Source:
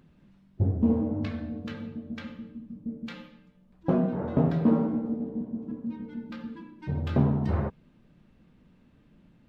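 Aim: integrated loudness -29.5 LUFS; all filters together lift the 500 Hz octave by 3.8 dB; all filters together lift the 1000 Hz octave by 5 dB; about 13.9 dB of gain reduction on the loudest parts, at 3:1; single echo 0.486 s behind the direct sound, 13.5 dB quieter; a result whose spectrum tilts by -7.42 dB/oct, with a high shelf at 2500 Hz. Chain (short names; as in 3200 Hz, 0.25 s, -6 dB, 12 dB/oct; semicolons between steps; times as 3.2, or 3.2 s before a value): bell 500 Hz +3.5 dB; bell 1000 Hz +6.5 dB; high shelf 2500 Hz -9 dB; compressor 3:1, threshold -36 dBFS; echo 0.486 s -13.5 dB; gain +9 dB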